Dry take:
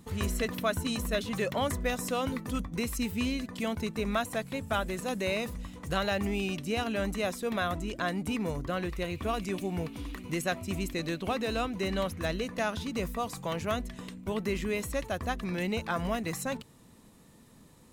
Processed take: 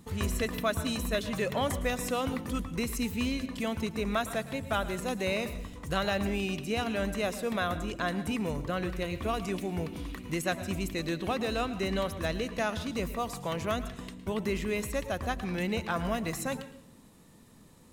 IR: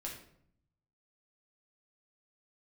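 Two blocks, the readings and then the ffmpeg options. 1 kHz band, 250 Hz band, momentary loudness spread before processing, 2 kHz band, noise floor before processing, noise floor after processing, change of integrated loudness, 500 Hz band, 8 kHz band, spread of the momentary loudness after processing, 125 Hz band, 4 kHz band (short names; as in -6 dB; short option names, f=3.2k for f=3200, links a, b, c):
0.0 dB, 0.0 dB, 4 LU, 0.0 dB, -56 dBFS, -55 dBFS, 0.0 dB, 0.0 dB, 0.0 dB, 4 LU, +0.5 dB, 0.0 dB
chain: -filter_complex "[0:a]asplit=2[a][b];[1:a]atrim=start_sample=2205,adelay=110[c];[b][c]afir=irnorm=-1:irlink=0,volume=-11.5dB[d];[a][d]amix=inputs=2:normalize=0"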